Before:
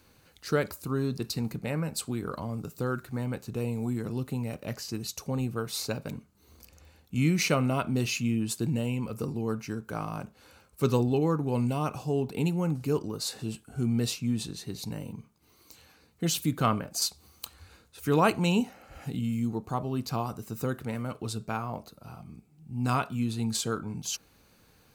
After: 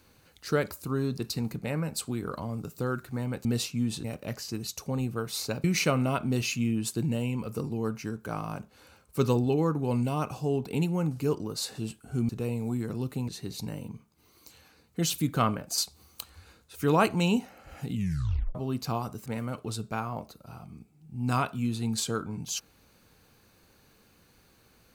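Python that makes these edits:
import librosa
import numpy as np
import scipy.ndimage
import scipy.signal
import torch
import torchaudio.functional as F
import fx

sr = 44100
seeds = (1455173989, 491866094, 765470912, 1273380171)

y = fx.edit(x, sr, fx.swap(start_s=3.45, length_s=0.99, other_s=13.93, other_length_s=0.59),
    fx.cut(start_s=6.04, length_s=1.24),
    fx.tape_stop(start_s=19.18, length_s=0.61),
    fx.cut(start_s=20.5, length_s=0.33), tone=tone)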